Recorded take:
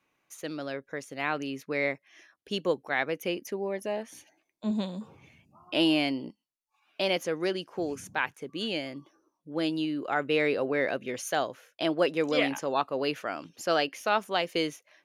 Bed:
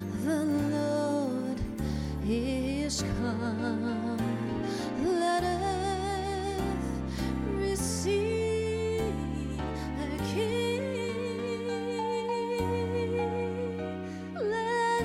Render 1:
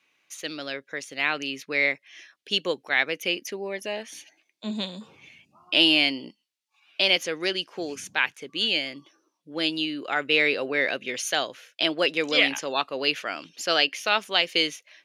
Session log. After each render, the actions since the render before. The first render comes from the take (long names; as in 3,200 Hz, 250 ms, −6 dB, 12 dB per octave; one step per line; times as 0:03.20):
meter weighting curve D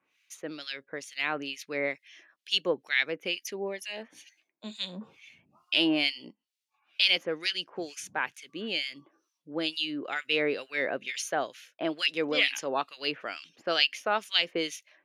two-band tremolo in antiphase 2.2 Hz, depth 100%, crossover 1,600 Hz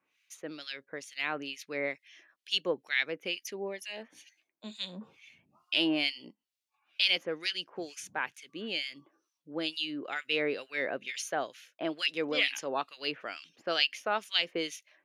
level −3 dB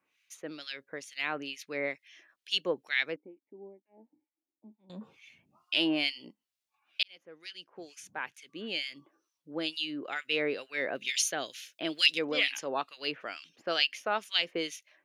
0:03.16–0:04.90: formant resonators in series u
0:07.03–0:08.81: fade in
0:10.95–0:12.19: drawn EQ curve 310 Hz 0 dB, 950 Hz −6 dB, 3,600 Hz +10 dB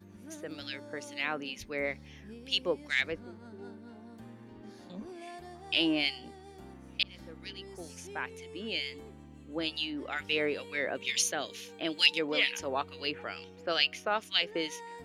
mix in bed −18.5 dB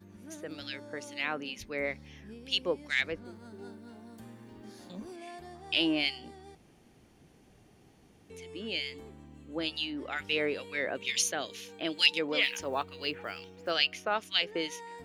0:03.25–0:05.16: high-shelf EQ 5,900 Hz +11 dB
0:06.55–0:08.30: fill with room tone
0:12.43–0:13.72: one scale factor per block 7 bits